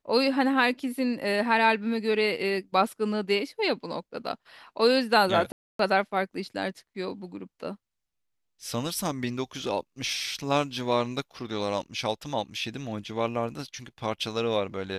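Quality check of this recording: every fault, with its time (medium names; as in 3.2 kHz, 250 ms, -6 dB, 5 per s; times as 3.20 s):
5.52–5.79 s: dropout 273 ms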